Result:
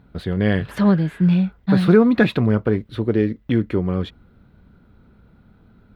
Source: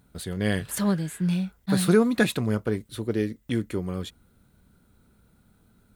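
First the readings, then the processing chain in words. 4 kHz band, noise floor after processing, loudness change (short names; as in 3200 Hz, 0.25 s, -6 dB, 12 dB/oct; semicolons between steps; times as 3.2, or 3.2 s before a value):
+0.5 dB, -54 dBFS, +7.0 dB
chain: high shelf 12000 Hz +11 dB; in parallel at -2 dB: limiter -19 dBFS, peak gain reduction 10.5 dB; on the sum: air absorption 330 m; gain +4.5 dB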